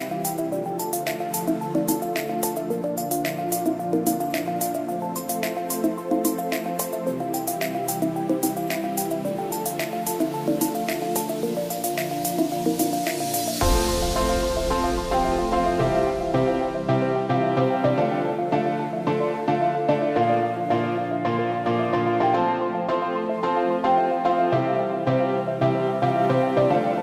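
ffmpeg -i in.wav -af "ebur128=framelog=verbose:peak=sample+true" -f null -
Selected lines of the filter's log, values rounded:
Integrated loudness:
  I:         -23.8 LUFS
  Threshold: -33.8 LUFS
Loudness range:
  LRA:         3.5 LU
  Threshold: -43.8 LUFS
  LRA low:   -25.8 LUFS
  LRA high:  -22.3 LUFS
Sample peak:
  Peak:       -9.8 dBFS
True peak:
  Peak:       -9.5 dBFS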